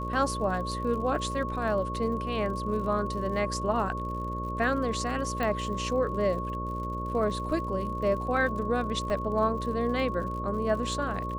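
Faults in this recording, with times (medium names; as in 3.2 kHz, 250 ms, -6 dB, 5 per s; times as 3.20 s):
buzz 60 Hz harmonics 10 -35 dBFS
crackle 62 per s -38 dBFS
whine 1.1 kHz -34 dBFS
5.43 s: pop -18 dBFS
9.10 s: dropout 3.2 ms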